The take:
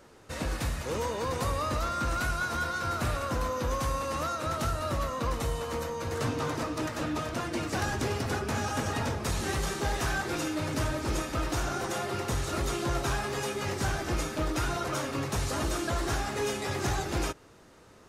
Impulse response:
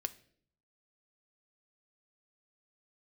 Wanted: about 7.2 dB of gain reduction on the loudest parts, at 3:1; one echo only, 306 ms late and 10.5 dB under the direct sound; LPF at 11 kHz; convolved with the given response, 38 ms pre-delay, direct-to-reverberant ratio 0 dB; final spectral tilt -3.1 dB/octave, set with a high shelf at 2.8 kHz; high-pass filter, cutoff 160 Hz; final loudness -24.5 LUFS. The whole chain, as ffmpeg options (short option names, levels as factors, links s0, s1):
-filter_complex "[0:a]highpass=160,lowpass=11000,highshelf=f=2800:g=3.5,acompressor=threshold=0.0141:ratio=3,aecho=1:1:306:0.299,asplit=2[s0][s1];[1:a]atrim=start_sample=2205,adelay=38[s2];[s1][s2]afir=irnorm=-1:irlink=0,volume=1.06[s3];[s0][s3]amix=inputs=2:normalize=0,volume=3.16"